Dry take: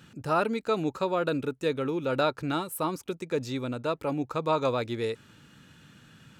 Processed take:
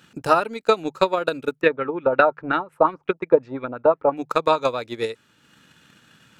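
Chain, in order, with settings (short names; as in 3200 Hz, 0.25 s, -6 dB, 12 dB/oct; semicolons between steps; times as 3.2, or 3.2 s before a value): low shelf 250 Hz -10 dB; notches 50/100/150 Hz; transient shaper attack +12 dB, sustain -5 dB; 1.61–4.17 LFO low-pass sine 5.6 Hz 730–2200 Hz; gain +2.5 dB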